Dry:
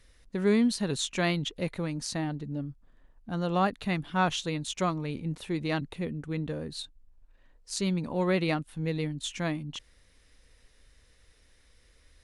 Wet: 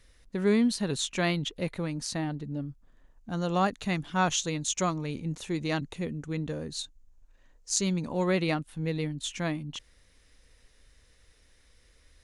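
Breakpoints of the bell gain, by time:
bell 6600 Hz 0.51 oct
2.37 s +1 dB
3.43 s +12 dB
8.17 s +12 dB
8.6 s +2 dB

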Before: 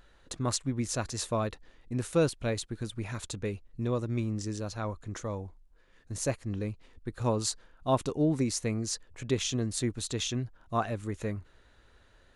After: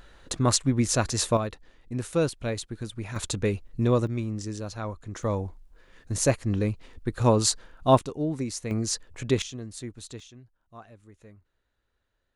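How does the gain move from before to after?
+8 dB
from 1.37 s +1 dB
from 3.16 s +8 dB
from 4.07 s +1 dB
from 5.23 s +8 dB
from 7.99 s -2 dB
from 8.71 s +5 dB
from 9.42 s -7 dB
from 10.2 s -17 dB

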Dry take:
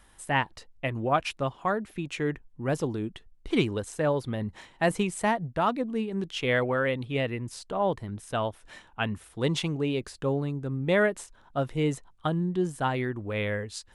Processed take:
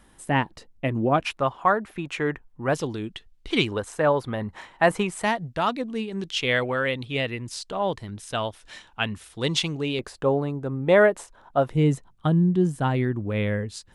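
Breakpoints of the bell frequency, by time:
bell +9 dB 2.2 oct
240 Hz
from 1.26 s 1100 Hz
from 2.74 s 3600 Hz
from 3.72 s 1100 Hz
from 5.23 s 4600 Hz
from 9.99 s 740 Hz
from 11.7 s 160 Hz

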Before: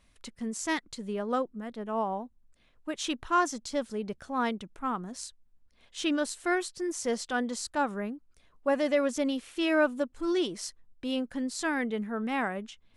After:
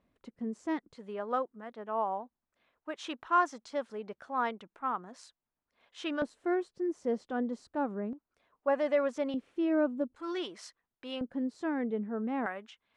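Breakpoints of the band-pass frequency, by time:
band-pass, Q 0.73
360 Hz
from 0.95 s 990 Hz
from 6.22 s 320 Hz
from 8.13 s 850 Hz
from 9.34 s 270 Hz
from 10.16 s 1300 Hz
from 11.21 s 350 Hz
from 12.46 s 1300 Hz

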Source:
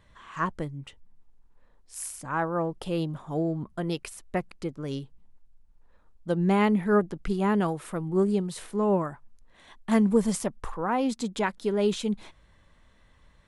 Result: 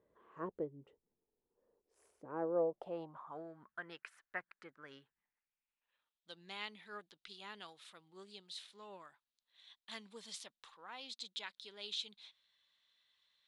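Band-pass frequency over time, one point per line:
band-pass, Q 3.8
2.49 s 430 Hz
3.52 s 1600 Hz
5.01 s 1600 Hz
6.31 s 3800 Hz

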